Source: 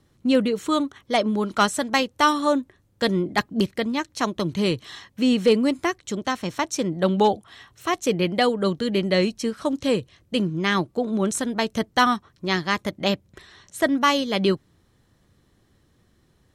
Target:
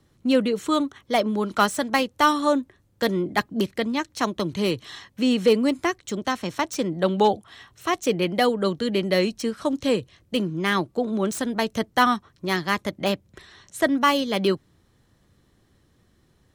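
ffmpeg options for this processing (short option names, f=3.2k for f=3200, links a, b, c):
-filter_complex "[0:a]acrossover=split=200|3000[a][b][c];[a]alimiter=level_in=8dB:limit=-24dB:level=0:latency=1,volume=-8dB[d];[c]aeval=exprs='0.0447*(abs(mod(val(0)/0.0447+3,4)-2)-1)':c=same[e];[d][b][e]amix=inputs=3:normalize=0"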